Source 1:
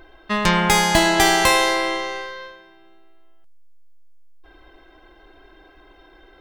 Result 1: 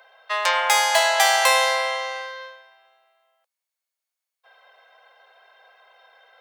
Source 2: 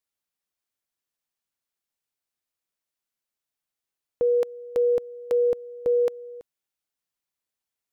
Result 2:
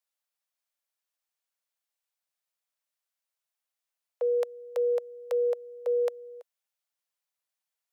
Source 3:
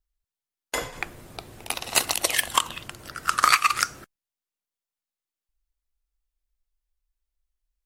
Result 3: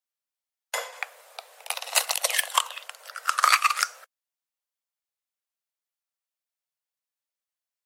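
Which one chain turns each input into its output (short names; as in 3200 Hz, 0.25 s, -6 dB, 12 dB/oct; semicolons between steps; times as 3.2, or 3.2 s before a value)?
steep high-pass 490 Hz 72 dB/oct; gain -1 dB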